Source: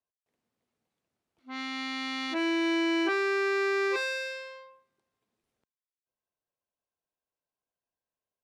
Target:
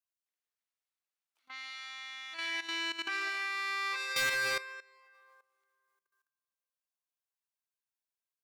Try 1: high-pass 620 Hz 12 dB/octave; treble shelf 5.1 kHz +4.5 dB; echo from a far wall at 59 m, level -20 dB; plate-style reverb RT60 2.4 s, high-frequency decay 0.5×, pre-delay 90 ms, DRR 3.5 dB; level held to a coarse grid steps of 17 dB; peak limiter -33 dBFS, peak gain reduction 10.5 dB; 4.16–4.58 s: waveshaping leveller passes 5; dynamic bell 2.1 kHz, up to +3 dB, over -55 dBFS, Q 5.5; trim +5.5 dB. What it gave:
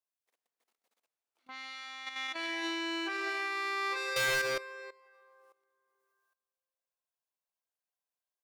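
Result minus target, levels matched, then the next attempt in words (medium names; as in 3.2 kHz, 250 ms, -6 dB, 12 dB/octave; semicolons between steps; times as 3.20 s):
500 Hz band +7.5 dB
high-pass 1.3 kHz 12 dB/octave; treble shelf 5.1 kHz +4.5 dB; echo from a far wall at 59 m, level -20 dB; plate-style reverb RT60 2.4 s, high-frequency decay 0.5×, pre-delay 90 ms, DRR 3.5 dB; level held to a coarse grid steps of 17 dB; peak limiter -33 dBFS, peak gain reduction 10 dB; 4.16–4.58 s: waveshaping leveller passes 5; dynamic bell 2.1 kHz, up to +3 dB, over -55 dBFS, Q 5.5; trim +5.5 dB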